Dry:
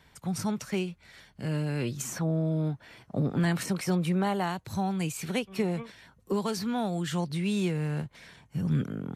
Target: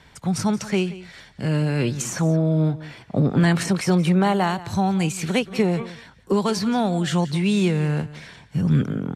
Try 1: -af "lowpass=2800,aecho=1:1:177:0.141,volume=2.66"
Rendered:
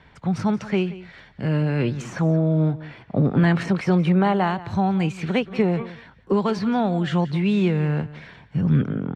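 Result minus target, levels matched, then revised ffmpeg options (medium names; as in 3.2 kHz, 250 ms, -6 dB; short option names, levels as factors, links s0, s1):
8 kHz band -15.5 dB
-af "lowpass=9200,aecho=1:1:177:0.141,volume=2.66"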